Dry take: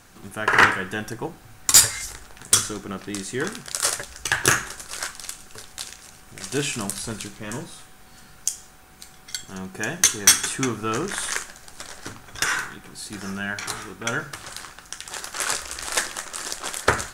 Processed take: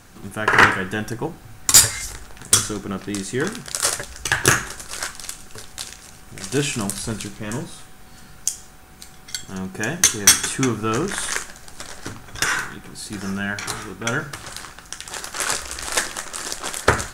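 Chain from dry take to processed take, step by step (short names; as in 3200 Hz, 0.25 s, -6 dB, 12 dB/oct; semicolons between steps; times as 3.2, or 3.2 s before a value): low shelf 350 Hz +4.5 dB; gain +2 dB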